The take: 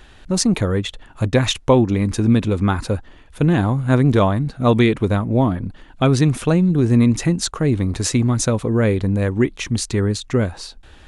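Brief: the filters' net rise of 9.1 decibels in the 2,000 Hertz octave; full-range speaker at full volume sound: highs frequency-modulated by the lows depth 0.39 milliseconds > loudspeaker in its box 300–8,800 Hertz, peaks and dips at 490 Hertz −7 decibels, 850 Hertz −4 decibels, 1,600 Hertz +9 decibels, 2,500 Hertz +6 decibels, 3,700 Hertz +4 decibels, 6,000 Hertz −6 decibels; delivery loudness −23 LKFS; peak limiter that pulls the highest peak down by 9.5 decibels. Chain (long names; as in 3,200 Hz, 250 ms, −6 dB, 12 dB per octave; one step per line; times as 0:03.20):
parametric band 2,000 Hz +3.5 dB
brickwall limiter −11 dBFS
highs frequency-modulated by the lows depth 0.39 ms
loudspeaker in its box 300–8,800 Hz, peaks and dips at 490 Hz −7 dB, 850 Hz −4 dB, 1,600 Hz +9 dB, 2,500 Hz +6 dB, 3,700 Hz +4 dB, 6,000 Hz −6 dB
level +1.5 dB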